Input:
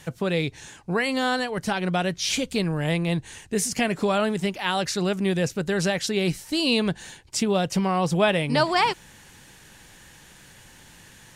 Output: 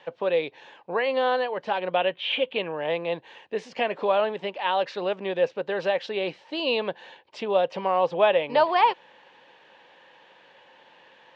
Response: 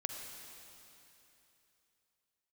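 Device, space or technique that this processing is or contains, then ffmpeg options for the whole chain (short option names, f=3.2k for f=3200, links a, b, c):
phone earpiece: -filter_complex "[0:a]asettb=1/sr,asplit=3[a][b][c];[a]atrim=end=1.964[d];[b]atrim=start=1.96:end=2.77,asetpts=PTS-STARTPTS,afade=t=in:d=0.004:c=qsin,afade=t=out:st=0.806:d=0.004:c=qsin,highshelf=f=4.1k:t=q:w=3:g=-10[e];[c]atrim=start=2.766[f];[d][e]acrossfade=d=0.004:c1=hsin:c2=qsin[g];[g][f]acrossfade=d=0.004:c1=qsin:c2=hsin,highpass=480,equalizer=f=530:t=q:w=4:g=9,equalizer=f=930:t=q:w=4:g=5,equalizer=f=1.4k:t=q:w=4:g=-6,equalizer=f=2.1k:t=q:w=4:g=-5,lowpass=f=3.2k:w=0.5412,lowpass=f=3.2k:w=1.3066"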